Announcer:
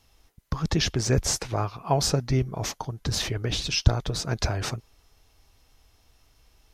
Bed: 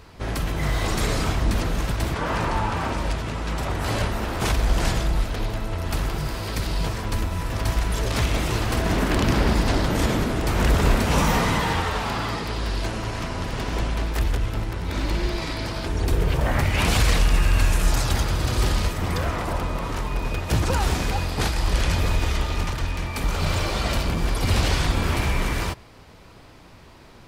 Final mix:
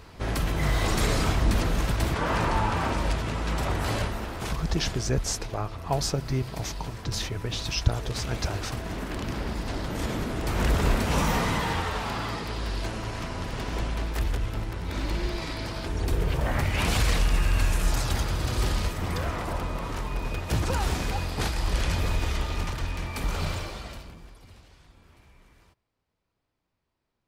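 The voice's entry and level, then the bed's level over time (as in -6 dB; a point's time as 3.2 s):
4.00 s, -4.0 dB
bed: 3.74 s -1 dB
4.67 s -11.5 dB
9.56 s -11.5 dB
10.6 s -4.5 dB
23.4 s -4.5 dB
24.66 s -33.5 dB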